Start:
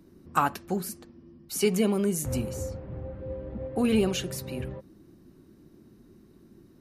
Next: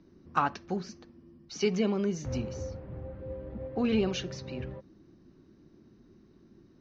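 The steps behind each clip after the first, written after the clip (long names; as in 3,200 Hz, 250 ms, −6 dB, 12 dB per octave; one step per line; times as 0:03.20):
Chebyshev low-pass filter 6,200 Hz, order 6
level −2.5 dB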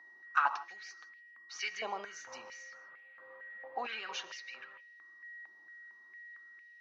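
steady tone 1,900 Hz −51 dBFS
convolution reverb, pre-delay 3 ms, DRR 15 dB
high-pass on a step sequencer 4.4 Hz 850–2,400 Hz
level −5 dB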